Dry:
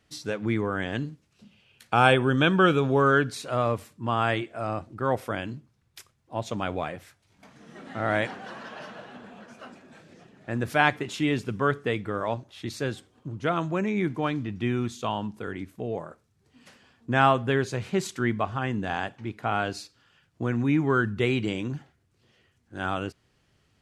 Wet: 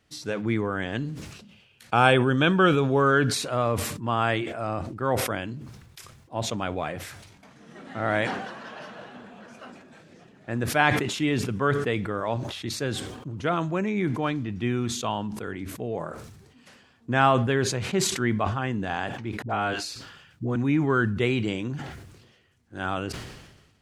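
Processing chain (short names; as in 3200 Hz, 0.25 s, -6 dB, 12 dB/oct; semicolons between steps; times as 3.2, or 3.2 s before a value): 19.42–20.56 dispersion highs, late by 74 ms, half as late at 460 Hz; sustainer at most 48 dB/s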